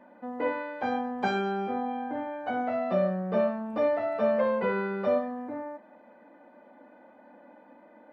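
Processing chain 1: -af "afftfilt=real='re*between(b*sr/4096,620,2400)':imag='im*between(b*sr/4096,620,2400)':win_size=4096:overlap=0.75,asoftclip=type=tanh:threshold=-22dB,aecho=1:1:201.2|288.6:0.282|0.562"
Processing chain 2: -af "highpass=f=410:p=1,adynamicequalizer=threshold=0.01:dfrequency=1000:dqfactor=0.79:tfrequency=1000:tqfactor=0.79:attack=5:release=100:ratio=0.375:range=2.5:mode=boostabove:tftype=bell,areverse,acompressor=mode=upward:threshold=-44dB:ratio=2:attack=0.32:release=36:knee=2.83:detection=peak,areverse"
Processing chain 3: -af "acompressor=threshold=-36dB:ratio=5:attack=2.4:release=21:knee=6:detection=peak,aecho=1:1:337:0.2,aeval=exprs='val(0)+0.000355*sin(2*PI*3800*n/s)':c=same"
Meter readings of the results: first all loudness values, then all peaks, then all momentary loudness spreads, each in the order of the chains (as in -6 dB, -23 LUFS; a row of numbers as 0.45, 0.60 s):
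-34.0, -28.5, -38.0 LUFS; -20.5, -13.5, -27.5 dBFS; 11, 11, 17 LU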